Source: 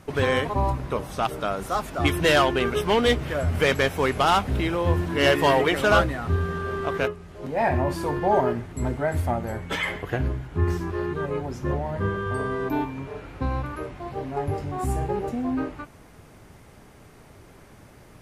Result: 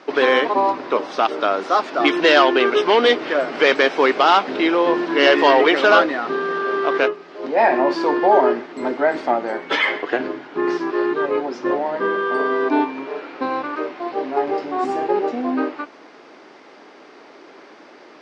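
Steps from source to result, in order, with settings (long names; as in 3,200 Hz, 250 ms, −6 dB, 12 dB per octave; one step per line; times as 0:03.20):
sub-octave generator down 2 octaves, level −5 dB
elliptic band-pass filter 300–5,000 Hz, stop band 50 dB
in parallel at +0.5 dB: brickwall limiter −16 dBFS, peak gain reduction 8.5 dB
on the sum: level +3 dB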